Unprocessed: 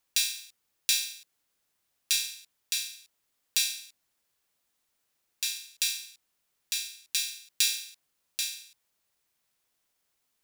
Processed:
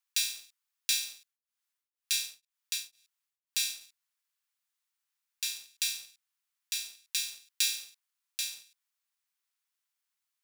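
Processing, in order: high-pass 970 Hz 24 dB/octave; waveshaping leveller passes 1; 1.17–3.81 s: tremolo of two beating tones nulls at 2 Hz; trim -6.5 dB

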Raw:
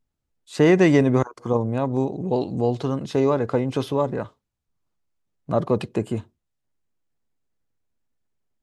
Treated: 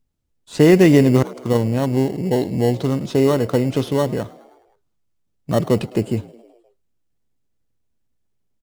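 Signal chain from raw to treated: in parallel at -8.5 dB: sample-and-hold 18×; on the sum: peaking EQ 960 Hz -4.5 dB 1.9 oct; frequency-shifting echo 105 ms, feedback 62%, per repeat +60 Hz, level -22 dB; trim +3 dB

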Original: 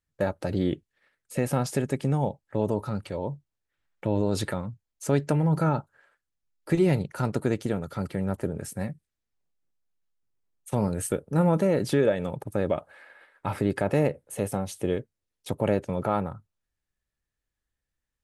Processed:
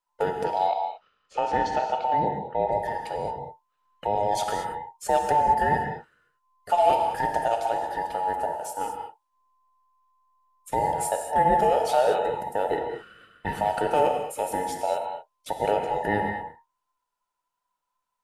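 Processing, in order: every band turned upside down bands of 1 kHz; 0.44–2.71 s: low-pass 6.9 kHz -> 3.8 kHz 24 dB/octave; gated-style reverb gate 250 ms flat, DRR 3.5 dB

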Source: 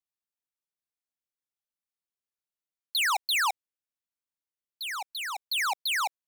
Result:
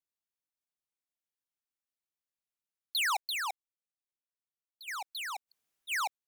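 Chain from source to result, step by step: 3.20–4.88 s: level held to a coarse grid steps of 15 dB; 5.49–5.90 s: room tone, crossfade 0.06 s; trim -4 dB

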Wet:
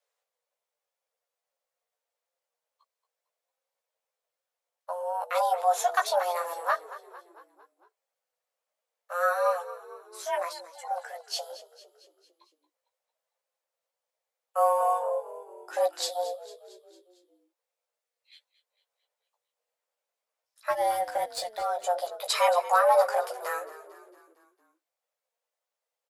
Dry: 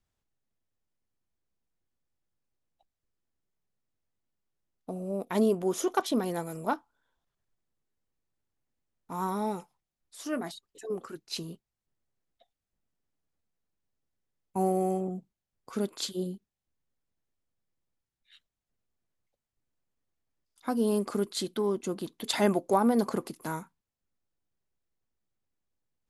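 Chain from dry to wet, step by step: high-pass 130 Hz 24 dB/octave; frequency shift +350 Hz; 20.70–21.62 s: power-law waveshaper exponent 1.4; chorus voices 6, 0.22 Hz, delay 15 ms, depth 4 ms; on a send: frequency-shifting echo 226 ms, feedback 55%, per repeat -44 Hz, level -16 dB; on the sum: trim +6 dB

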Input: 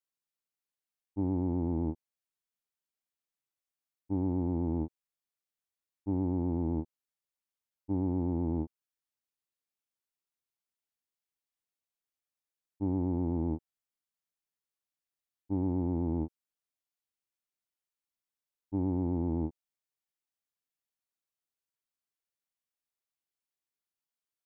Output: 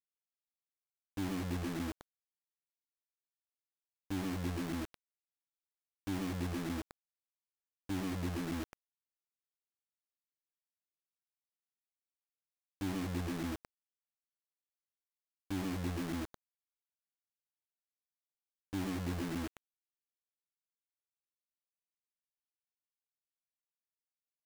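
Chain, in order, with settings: on a send: feedback delay 112 ms, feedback 36%, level -4.5 dB; on the sum: reverb removal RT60 0.91 s; bass shelf 77 Hz -5 dB; in parallel at -1 dB: compression 20:1, threshold -48 dBFS, peak gain reduction 21.5 dB; on the sum: low-pass 1 kHz 24 dB/octave; peaking EQ 710 Hz -5 dB 1.6 oct; word length cut 6-bit, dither none; trim -5 dB

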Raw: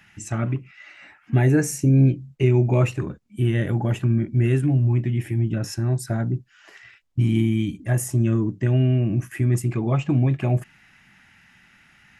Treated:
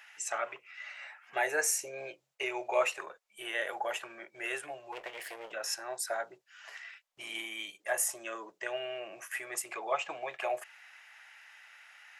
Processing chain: 4.92–5.52 s: comb filter that takes the minimum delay 0.61 ms; inverse Chebyshev high-pass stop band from 280 Hz, stop band 40 dB

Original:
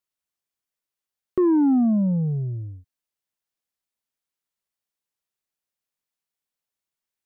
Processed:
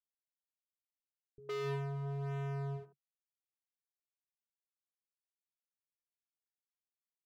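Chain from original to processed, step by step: send-on-delta sampling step -41.5 dBFS; steep low-pass 1.3 kHz; vocoder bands 8, square 139 Hz; overload inside the chain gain 33.5 dB; bands offset in time lows, highs 110 ms, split 260 Hz; trim -3.5 dB

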